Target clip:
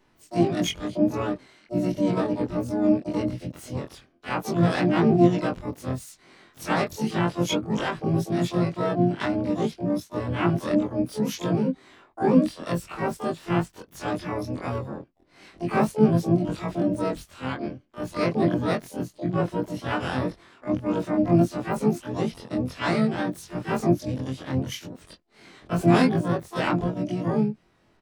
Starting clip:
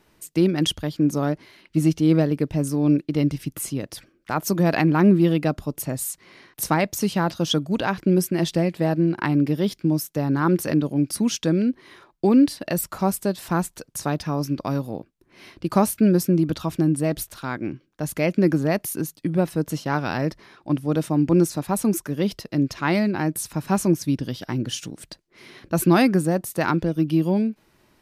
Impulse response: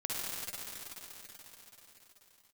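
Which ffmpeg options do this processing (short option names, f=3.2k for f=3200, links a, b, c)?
-filter_complex "[0:a]afftfilt=real='re':imag='-im':win_size=2048:overlap=0.75,adynamicsmooth=sensitivity=1.5:basefreq=5k,asplit=4[a][b][c][d];[b]asetrate=29433,aresample=44100,atempo=1.49831,volume=-10dB[e];[c]asetrate=33038,aresample=44100,atempo=1.33484,volume=-10dB[f];[d]asetrate=88200,aresample=44100,atempo=0.5,volume=-6dB[g];[a][e][f][g]amix=inputs=4:normalize=0"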